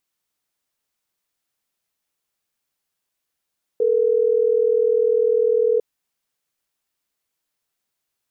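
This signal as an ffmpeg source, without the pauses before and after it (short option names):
-f lavfi -i "aevalsrc='0.133*(sin(2*PI*440*t)+sin(2*PI*480*t))*clip(min(mod(t,6),2-mod(t,6))/0.005,0,1)':d=3.12:s=44100"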